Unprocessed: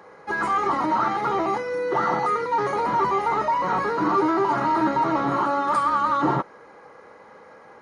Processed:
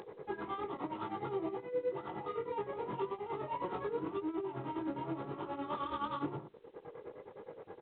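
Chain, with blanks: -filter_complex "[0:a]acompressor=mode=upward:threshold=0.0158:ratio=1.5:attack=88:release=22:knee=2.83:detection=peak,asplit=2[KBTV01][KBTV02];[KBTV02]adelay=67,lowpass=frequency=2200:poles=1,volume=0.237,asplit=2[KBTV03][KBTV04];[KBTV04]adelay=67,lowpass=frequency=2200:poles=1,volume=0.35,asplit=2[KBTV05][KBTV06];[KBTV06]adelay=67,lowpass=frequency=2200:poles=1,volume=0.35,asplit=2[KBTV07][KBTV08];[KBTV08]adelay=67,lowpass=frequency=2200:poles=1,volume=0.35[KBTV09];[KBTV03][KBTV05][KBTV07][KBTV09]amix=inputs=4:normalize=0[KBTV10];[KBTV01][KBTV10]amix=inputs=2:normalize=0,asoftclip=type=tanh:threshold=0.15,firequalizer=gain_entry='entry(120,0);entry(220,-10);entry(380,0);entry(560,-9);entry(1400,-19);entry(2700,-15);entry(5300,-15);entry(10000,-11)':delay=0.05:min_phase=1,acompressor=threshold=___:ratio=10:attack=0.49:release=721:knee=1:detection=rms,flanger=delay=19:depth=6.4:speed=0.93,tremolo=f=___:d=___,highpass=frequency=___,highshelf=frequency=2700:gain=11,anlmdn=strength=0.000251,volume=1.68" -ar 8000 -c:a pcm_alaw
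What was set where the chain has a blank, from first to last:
0.0282, 9.6, 0.64, 74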